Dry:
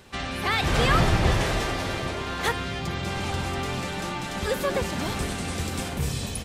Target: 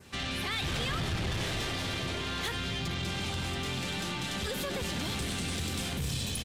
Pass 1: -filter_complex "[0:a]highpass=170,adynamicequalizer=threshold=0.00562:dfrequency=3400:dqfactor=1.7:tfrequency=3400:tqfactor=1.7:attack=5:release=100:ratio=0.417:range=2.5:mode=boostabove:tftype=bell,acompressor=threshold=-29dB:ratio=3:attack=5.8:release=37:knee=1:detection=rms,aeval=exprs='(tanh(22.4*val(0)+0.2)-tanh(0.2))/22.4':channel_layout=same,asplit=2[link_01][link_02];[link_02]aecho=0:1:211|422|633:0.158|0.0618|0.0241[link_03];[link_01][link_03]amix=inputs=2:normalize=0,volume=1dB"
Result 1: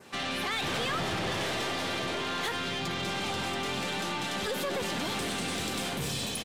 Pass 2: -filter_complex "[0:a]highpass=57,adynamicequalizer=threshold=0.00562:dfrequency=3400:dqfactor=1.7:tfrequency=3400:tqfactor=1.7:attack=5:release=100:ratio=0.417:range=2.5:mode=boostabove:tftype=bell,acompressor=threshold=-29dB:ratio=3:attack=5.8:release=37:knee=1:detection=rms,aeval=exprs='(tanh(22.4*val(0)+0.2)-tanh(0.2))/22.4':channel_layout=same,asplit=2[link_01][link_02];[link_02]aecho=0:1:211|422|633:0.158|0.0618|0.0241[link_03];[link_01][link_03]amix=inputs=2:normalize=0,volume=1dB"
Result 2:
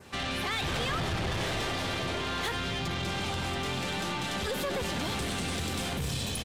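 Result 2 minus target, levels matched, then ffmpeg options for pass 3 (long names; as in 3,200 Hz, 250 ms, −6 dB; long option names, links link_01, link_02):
1,000 Hz band +3.5 dB
-filter_complex "[0:a]highpass=57,adynamicequalizer=threshold=0.00562:dfrequency=3400:dqfactor=1.7:tfrequency=3400:tqfactor=1.7:attack=5:release=100:ratio=0.417:range=2.5:mode=boostabove:tftype=bell,acompressor=threshold=-29dB:ratio=3:attack=5.8:release=37:knee=1:detection=rms,equalizer=frequency=770:width_type=o:width=2.4:gain=-6.5,aeval=exprs='(tanh(22.4*val(0)+0.2)-tanh(0.2))/22.4':channel_layout=same,asplit=2[link_01][link_02];[link_02]aecho=0:1:211|422|633:0.158|0.0618|0.0241[link_03];[link_01][link_03]amix=inputs=2:normalize=0,volume=1dB"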